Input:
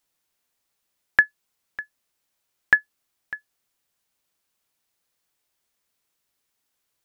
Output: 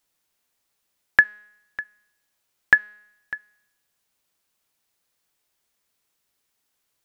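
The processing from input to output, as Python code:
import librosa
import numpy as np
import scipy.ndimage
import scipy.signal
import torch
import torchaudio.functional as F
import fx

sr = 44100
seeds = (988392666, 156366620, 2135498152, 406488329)

y = fx.comb_fb(x, sr, f0_hz=210.0, decay_s=0.89, harmonics='all', damping=0.0, mix_pct=40)
y = y * librosa.db_to_amplitude(6.0)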